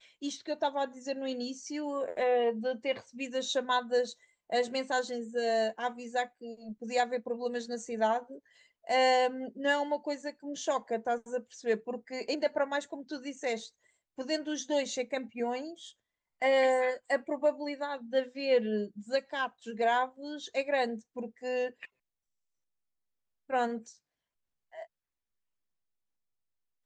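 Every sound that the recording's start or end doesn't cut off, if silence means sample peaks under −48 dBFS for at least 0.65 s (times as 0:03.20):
0:23.50–0:23.92
0:24.73–0:24.85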